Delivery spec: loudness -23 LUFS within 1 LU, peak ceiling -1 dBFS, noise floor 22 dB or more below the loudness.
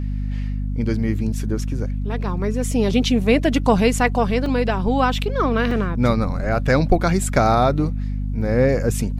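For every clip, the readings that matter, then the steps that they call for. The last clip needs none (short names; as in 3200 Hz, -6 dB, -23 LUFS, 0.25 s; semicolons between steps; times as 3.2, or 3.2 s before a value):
dropouts 2; longest dropout 2.6 ms; hum 50 Hz; harmonics up to 250 Hz; hum level -21 dBFS; loudness -20.0 LUFS; peak -2.5 dBFS; loudness target -23.0 LUFS
-> interpolate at 4.46/5.71, 2.6 ms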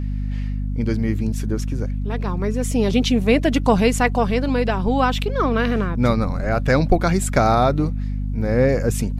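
dropouts 0; hum 50 Hz; harmonics up to 250 Hz; hum level -21 dBFS
-> de-hum 50 Hz, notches 5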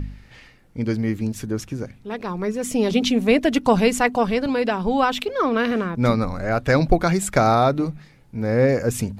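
hum none; loudness -21.0 LUFS; peak -3.5 dBFS; loudness target -23.0 LUFS
-> gain -2 dB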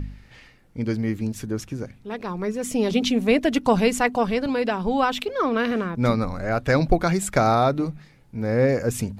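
loudness -23.0 LUFS; peak -5.5 dBFS; noise floor -53 dBFS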